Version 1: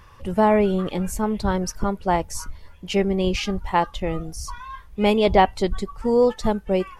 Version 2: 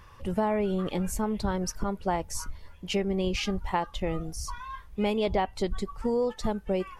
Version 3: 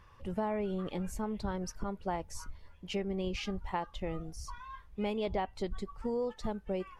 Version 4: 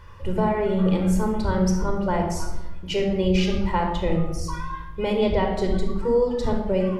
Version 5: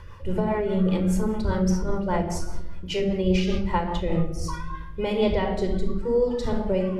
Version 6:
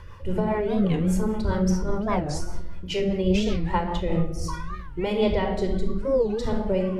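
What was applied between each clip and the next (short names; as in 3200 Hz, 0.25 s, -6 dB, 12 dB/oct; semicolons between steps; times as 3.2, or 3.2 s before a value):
compressor 4:1, threshold -21 dBFS, peak gain reduction 9.5 dB; gain -3 dB
high shelf 7200 Hz -8 dB; gain -7 dB
shoebox room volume 4000 m³, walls furnished, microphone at 4.8 m; gain +8 dB
reverse; upward compressor, threshold -24 dBFS; reverse; rotary speaker horn 5 Hz, later 0.8 Hz, at 3.91
record warp 45 rpm, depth 250 cents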